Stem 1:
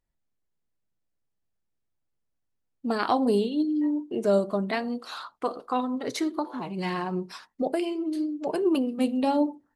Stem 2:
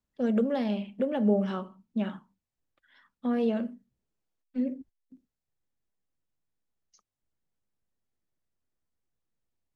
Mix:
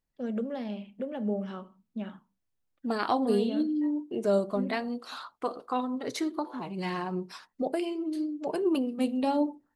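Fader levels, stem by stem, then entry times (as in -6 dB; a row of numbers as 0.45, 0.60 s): -3.0, -6.5 dB; 0.00, 0.00 s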